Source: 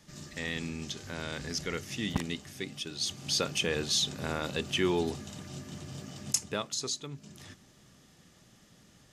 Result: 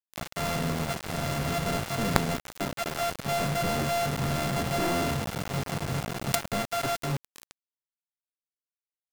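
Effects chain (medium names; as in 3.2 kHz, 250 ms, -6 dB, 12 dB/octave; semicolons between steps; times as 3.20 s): sorted samples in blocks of 64 samples; dynamic bell 140 Hz, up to +7 dB, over -49 dBFS, Q 0.8; companded quantiser 2-bit; trim -1 dB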